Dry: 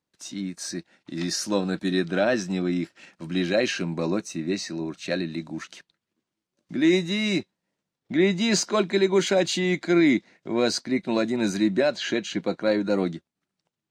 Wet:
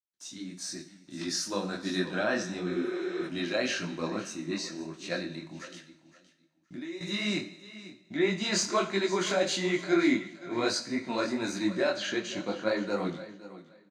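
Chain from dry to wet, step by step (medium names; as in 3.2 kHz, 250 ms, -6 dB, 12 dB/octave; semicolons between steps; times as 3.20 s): dynamic bell 1.2 kHz, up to +8 dB, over -43 dBFS, Q 1.4; gate with hold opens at -51 dBFS; peaking EQ 5.9 kHz +4.5 dB 2.3 oct; two-slope reverb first 0.63 s, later 2.2 s, from -19 dB, DRR 8 dB; 5.58–7.01 s: compression 5:1, threshold -31 dBFS, peak gain reduction 16.5 dB; feedback delay 519 ms, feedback 20%, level -16 dB; 2.71–3.25 s: spectral replace 320–8500 Hz before; detune thickener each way 54 cents; trim -5 dB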